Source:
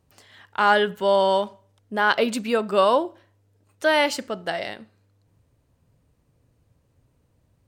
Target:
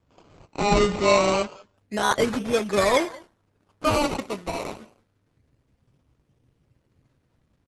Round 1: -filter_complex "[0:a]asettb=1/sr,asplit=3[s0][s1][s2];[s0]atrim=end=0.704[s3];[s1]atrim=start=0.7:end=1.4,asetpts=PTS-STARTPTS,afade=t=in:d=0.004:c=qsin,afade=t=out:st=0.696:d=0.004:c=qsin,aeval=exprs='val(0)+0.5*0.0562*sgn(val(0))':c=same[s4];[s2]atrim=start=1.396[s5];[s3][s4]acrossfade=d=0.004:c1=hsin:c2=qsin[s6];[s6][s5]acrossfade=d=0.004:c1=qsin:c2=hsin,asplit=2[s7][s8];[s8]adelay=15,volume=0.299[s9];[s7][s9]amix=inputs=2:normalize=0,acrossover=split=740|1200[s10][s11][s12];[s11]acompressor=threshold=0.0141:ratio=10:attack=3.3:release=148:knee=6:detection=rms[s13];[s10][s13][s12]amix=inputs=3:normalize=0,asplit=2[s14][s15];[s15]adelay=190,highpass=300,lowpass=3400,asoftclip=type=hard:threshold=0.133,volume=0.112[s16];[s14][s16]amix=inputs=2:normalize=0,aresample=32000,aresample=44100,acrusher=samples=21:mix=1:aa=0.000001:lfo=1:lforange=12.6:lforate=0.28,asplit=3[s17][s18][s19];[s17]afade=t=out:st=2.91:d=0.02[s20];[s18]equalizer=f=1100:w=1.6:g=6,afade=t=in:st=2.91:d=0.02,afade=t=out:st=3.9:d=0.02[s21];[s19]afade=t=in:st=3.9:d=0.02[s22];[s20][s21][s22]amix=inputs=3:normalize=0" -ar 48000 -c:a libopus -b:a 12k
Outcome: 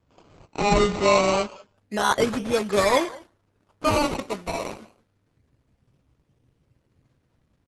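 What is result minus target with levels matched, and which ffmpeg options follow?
compression: peak gain reduction -6.5 dB
-filter_complex "[0:a]asettb=1/sr,asplit=3[s0][s1][s2];[s0]atrim=end=0.704[s3];[s1]atrim=start=0.7:end=1.4,asetpts=PTS-STARTPTS,afade=t=in:d=0.004:c=qsin,afade=t=out:st=0.696:d=0.004:c=qsin,aeval=exprs='val(0)+0.5*0.0562*sgn(val(0))':c=same[s4];[s2]atrim=start=1.396[s5];[s3][s4]acrossfade=d=0.004:c1=hsin:c2=qsin[s6];[s6][s5]acrossfade=d=0.004:c1=qsin:c2=hsin,asplit=2[s7][s8];[s8]adelay=15,volume=0.299[s9];[s7][s9]amix=inputs=2:normalize=0,acrossover=split=740|1200[s10][s11][s12];[s11]acompressor=threshold=0.00596:ratio=10:attack=3.3:release=148:knee=6:detection=rms[s13];[s10][s13][s12]amix=inputs=3:normalize=0,asplit=2[s14][s15];[s15]adelay=190,highpass=300,lowpass=3400,asoftclip=type=hard:threshold=0.133,volume=0.112[s16];[s14][s16]amix=inputs=2:normalize=0,aresample=32000,aresample=44100,acrusher=samples=21:mix=1:aa=0.000001:lfo=1:lforange=12.6:lforate=0.28,asplit=3[s17][s18][s19];[s17]afade=t=out:st=2.91:d=0.02[s20];[s18]equalizer=f=1100:w=1.6:g=6,afade=t=in:st=2.91:d=0.02,afade=t=out:st=3.9:d=0.02[s21];[s19]afade=t=in:st=3.9:d=0.02[s22];[s20][s21][s22]amix=inputs=3:normalize=0" -ar 48000 -c:a libopus -b:a 12k

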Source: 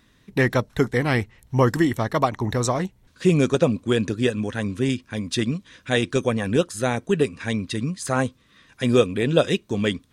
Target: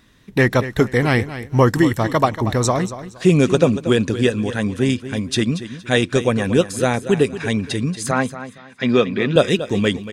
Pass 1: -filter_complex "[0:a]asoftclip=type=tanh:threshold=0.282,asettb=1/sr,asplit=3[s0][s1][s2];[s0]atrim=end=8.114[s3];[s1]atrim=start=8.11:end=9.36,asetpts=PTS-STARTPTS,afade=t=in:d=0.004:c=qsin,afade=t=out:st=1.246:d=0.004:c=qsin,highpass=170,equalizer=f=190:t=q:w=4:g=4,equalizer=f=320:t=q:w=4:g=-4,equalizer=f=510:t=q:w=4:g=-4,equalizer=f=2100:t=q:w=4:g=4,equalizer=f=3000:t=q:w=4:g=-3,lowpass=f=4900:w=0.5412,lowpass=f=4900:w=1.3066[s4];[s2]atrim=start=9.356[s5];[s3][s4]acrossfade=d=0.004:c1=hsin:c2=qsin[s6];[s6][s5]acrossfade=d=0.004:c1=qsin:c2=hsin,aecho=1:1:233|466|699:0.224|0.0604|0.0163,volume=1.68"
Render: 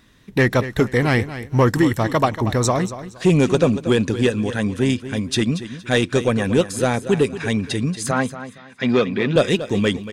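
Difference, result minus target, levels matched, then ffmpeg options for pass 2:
saturation: distortion +17 dB
-filter_complex "[0:a]asoftclip=type=tanh:threshold=0.891,asettb=1/sr,asplit=3[s0][s1][s2];[s0]atrim=end=8.114[s3];[s1]atrim=start=8.11:end=9.36,asetpts=PTS-STARTPTS,afade=t=in:d=0.004:c=qsin,afade=t=out:st=1.246:d=0.004:c=qsin,highpass=170,equalizer=f=190:t=q:w=4:g=4,equalizer=f=320:t=q:w=4:g=-4,equalizer=f=510:t=q:w=4:g=-4,equalizer=f=2100:t=q:w=4:g=4,equalizer=f=3000:t=q:w=4:g=-3,lowpass=f=4900:w=0.5412,lowpass=f=4900:w=1.3066[s4];[s2]atrim=start=9.356[s5];[s3][s4]acrossfade=d=0.004:c1=hsin:c2=qsin[s6];[s6][s5]acrossfade=d=0.004:c1=qsin:c2=hsin,aecho=1:1:233|466|699:0.224|0.0604|0.0163,volume=1.68"

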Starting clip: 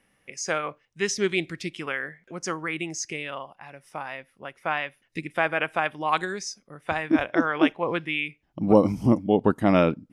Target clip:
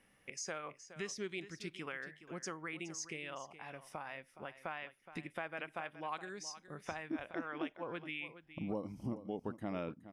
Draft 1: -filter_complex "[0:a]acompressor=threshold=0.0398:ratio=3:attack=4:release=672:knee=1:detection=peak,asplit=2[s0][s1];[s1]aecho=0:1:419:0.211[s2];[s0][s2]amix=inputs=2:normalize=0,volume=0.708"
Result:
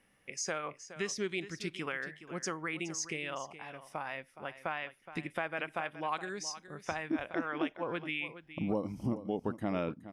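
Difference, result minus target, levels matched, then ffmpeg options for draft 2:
compression: peak gain reduction -6.5 dB
-filter_complex "[0:a]acompressor=threshold=0.0133:ratio=3:attack=4:release=672:knee=1:detection=peak,asplit=2[s0][s1];[s1]aecho=0:1:419:0.211[s2];[s0][s2]amix=inputs=2:normalize=0,volume=0.708"

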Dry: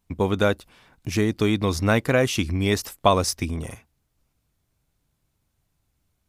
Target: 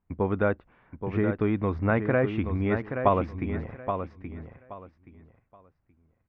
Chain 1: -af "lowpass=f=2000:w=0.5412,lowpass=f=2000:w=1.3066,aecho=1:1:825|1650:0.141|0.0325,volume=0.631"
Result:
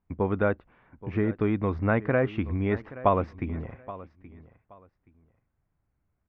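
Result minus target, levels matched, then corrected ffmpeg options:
echo-to-direct -9.5 dB
-af "lowpass=f=2000:w=0.5412,lowpass=f=2000:w=1.3066,aecho=1:1:825|1650|2475:0.422|0.097|0.0223,volume=0.631"

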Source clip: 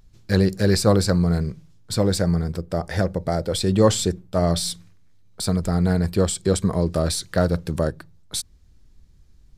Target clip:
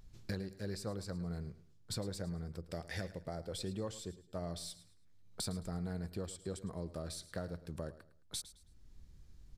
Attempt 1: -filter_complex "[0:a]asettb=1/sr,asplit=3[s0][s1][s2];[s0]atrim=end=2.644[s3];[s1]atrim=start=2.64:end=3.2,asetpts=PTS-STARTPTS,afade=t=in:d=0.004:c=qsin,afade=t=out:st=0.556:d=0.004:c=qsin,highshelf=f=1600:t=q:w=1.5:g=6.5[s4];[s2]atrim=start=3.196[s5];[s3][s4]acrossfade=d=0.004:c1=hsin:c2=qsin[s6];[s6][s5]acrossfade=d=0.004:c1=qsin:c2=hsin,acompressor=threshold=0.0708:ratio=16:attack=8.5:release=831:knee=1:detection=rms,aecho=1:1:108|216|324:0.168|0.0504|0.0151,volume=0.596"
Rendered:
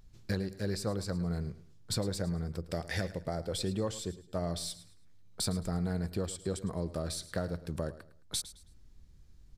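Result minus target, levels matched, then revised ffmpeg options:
compression: peak gain reduction -7 dB
-filter_complex "[0:a]asettb=1/sr,asplit=3[s0][s1][s2];[s0]atrim=end=2.644[s3];[s1]atrim=start=2.64:end=3.2,asetpts=PTS-STARTPTS,afade=t=in:d=0.004:c=qsin,afade=t=out:st=0.556:d=0.004:c=qsin,highshelf=f=1600:t=q:w=1.5:g=6.5[s4];[s2]atrim=start=3.196[s5];[s3][s4]acrossfade=d=0.004:c1=hsin:c2=qsin[s6];[s6][s5]acrossfade=d=0.004:c1=qsin:c2=hsin,acompressor=threshold=0.0299:ratio=16:attack=8.5:release=831:knee=1:detection=rms,aecho=1:1:108|216|324:0.168|0.0504|0.0151,volume=0.596"

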